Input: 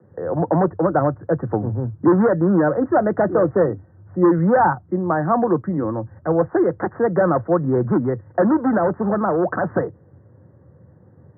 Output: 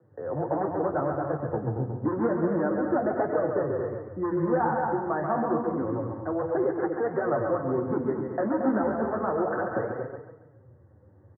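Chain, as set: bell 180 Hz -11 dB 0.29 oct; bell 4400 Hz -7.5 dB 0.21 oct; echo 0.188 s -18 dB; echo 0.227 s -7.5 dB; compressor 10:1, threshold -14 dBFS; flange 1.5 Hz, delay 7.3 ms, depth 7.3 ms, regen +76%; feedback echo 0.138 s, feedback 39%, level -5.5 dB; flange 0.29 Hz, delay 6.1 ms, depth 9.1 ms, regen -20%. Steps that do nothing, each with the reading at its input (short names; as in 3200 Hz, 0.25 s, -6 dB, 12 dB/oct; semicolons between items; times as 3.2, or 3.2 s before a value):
bell 4400 Hz: input band ends at 1800 Hz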